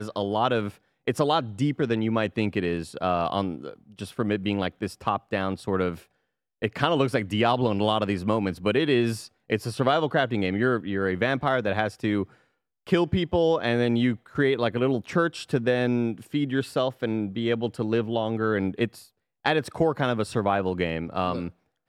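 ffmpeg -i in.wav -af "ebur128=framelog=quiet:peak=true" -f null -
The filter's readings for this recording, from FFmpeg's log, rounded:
Integrated loudness:
  I:         -25.8 LUFS
  Threshold: -36.1 LUFS
Loudness range:
  LRA:         3.6 LU
  Threshold: -46.1 LUFS
  LRA low:   -28.2 LUFS
  LRA high:  -24.7 LUFS
True peak:
  Peak:       -7.7 dBFS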